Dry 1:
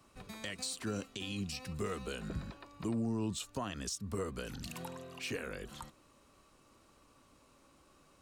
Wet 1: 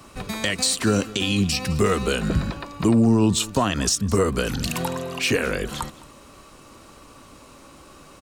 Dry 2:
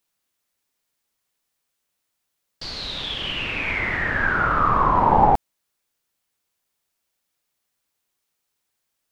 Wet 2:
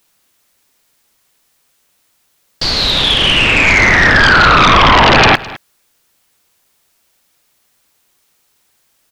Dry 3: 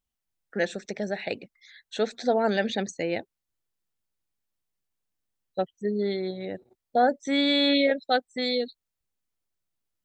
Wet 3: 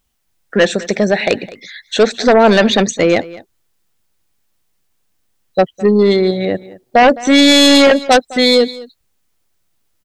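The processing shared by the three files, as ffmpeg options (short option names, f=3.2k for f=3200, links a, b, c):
-af "aeval=exprs='0.631*sin(PI/2*5.01*val(0)/0.631)':c=same,aecho=1:1:210:0.106"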